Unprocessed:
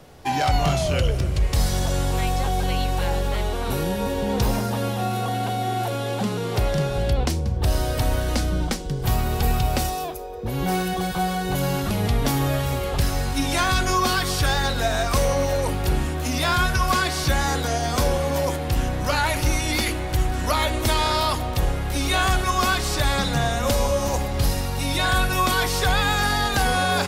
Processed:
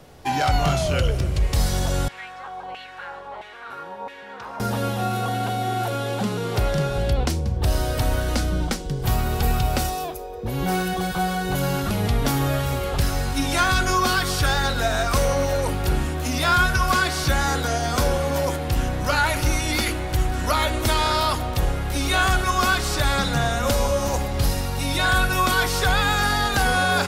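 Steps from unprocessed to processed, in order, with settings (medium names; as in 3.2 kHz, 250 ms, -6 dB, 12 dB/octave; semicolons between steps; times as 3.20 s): 2.08–4.60 s: LFO band-pass saw down 1.5 Hz 820–2200 Hz; dynamic bell 1.4 kHz, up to +6 dB, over -44 dBFS, Q 6.7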